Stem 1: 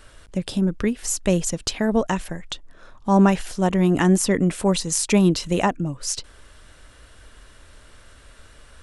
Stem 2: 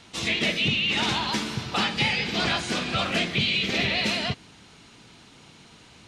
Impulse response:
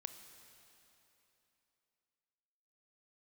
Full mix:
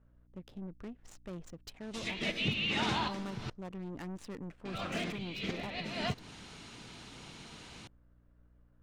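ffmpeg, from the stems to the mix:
-filter_complex "[0:a]aeval=exprs='(tanh(8.91*val(0)+0.4)-tanh(0.4))/8.91':c=same,aeval=exprs='val(0)+0.00562*(sin(2*PI*60*n/s)+sin(2*PI*2*60*n/s)/2+sin(2*PI*3*60*n/s)/3+sin(2*PI*4*60*n/s)/4+sin(2*PI*5*60*n/s)/5)':c=same,adynamicsmooth=sensitivity=4.5:basefreq=850,volume=0.112,asplit=2[s0][s1];[1:a]acompressor=threshold=0.0398:ratio=3,adynamicequalizer=threshold=0.00631:dfrequency=2000:dqfactor=0.7:tfrequency=2000:tqfactor=0.7:attack=5:release=100:ratio=0.375:range=3.5:mode=cutabove:tftype=highshelf,adelay=1800,volume=1.06,asplit=3[s2][s3][s4];[s2]atrim=end=3.5,asetpts=PTS-STARTPTS,afade=t=out:st=3.496:d=0.004:c=hsin[s5];[s3]atrim=start=3.5:end=4.65,asetpts=PTS-STARTPTS,volume=0[s6];[s4]atrim=start=4.65,asetpts=PTS-STARTPTS,afade=t=in:d=0.004:c=hsin[s7];[s5][s6][s7]concat=n=3:v=0:a=1[s8];[s1]apad=whole_len=347200[s9];[s8][s9]sidechaincompress=threshold=0.00282:ratio=12:attack=16:release=176[s10];[s0][s10]amix=inputs=2:normalize=0"

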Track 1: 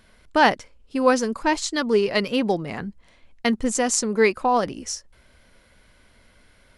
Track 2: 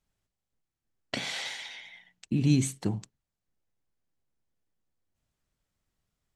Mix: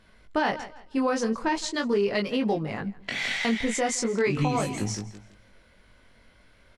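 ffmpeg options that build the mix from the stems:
-filter_complex "[0:a]highshelf=f=8000:g=-10.5,volume=1.19,asplit=2[s0][s1];[s1]volume=0.0841[s2];[1:a]equalizer=f=2000:t=o:w=1.1:g=11,adelay=1950,volume=1.19,asplit=2[s3][s4];[s4]volume=0.447[s5];[s2][s5]amix=inputs=2:normalize=0,aecho=0:1:165|330|495|660:1|0.27|0.0729|0.0197[s6];[s0][s3][s6]amix=inputs=3:normalize=0,flanger=delay=19:depth=3.3:speed=0.41,alimiter=limit=0.158:level=0:latency=1:release=81"

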